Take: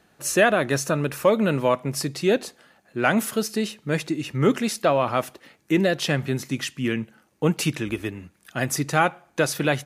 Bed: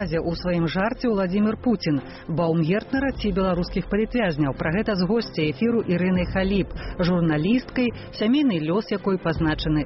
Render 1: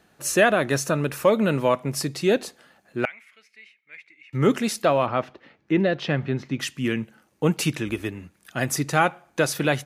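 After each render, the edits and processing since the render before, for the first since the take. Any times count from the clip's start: 3.05–4.33 s: band-pass filter 2.2 kHz, Q 14; 5.06–6.60 s: distance through air 230 m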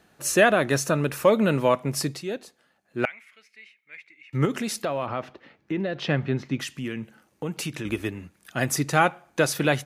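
2.11–3.02 s: dip -11 dB, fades 0.13 s; 4.45–6.03 s: compression 3:1, threshold -25 dBFS; 6.58–7.85 s: compression 2.5:1, threshold -30 dBFS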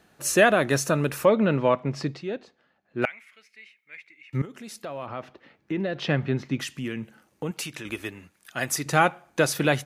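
1.25–3.02 s: distance through air 180 m; 4.42–5.85 s: fade in, from -19 dB; 7.51–8.86 s: bass shelf 470 Hz -9.5 dB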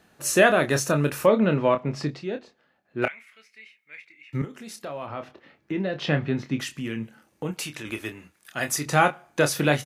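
doubling 27 ms -8 dB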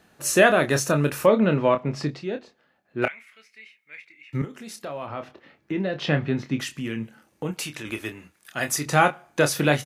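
trim +1 dB

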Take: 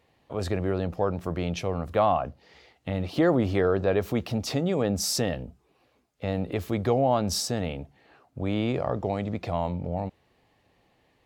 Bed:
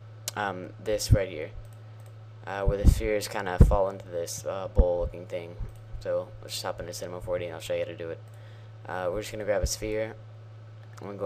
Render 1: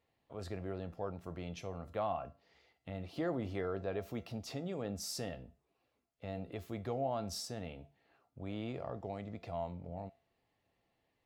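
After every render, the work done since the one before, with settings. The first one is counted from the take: flange 0.46 Hz, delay 9 ms, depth 1.7 ms, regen -85%; feedback comb 680 Hz, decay 0.28 s, mix 70%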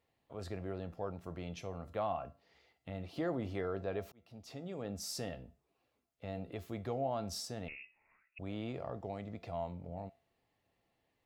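4.12–5.33 s: fade in equal-power; 7.68–8.39 s: frequency inversion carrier 2.7 kHz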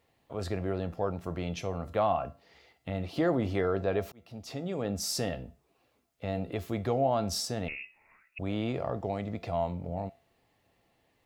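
trim +9 dB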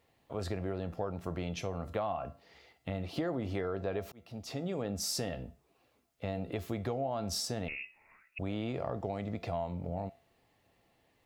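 compression, threshold -31 dBFS, peak gain reduction 9 dB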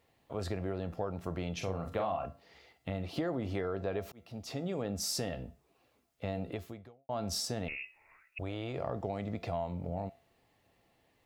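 1.57–2.26 s: doubling 42 ms -6 dB; 6.47–7.09 s: fade out quadratic; 7.77–8.77 s: peaking EQ 210 Hz -13.5 dB 0.45 oct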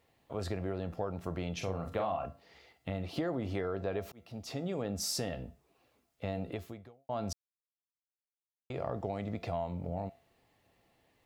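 7.33–8.70 s: mute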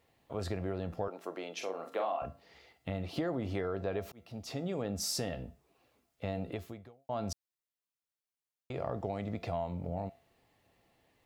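1.08–2.22 s: high-pass 300 Hz 24 dB/octave

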